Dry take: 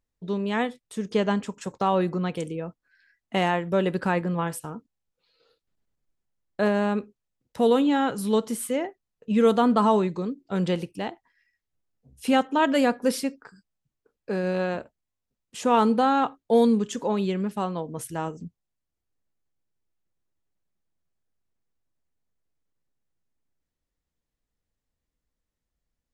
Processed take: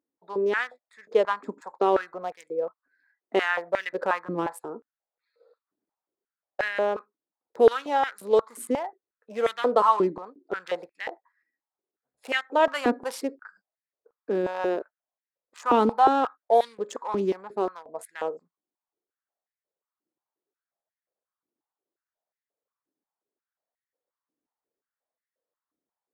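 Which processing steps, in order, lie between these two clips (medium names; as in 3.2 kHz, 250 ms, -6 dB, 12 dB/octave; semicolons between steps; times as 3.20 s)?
local Wiener filter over 15 samples; 2.23–2.63 s: peaking EQ 1.9 kHz -6.5 dB 2 oct; step-sequenced high-pass 5.6 Hz 300–1900 Hz; trim -2.5 dB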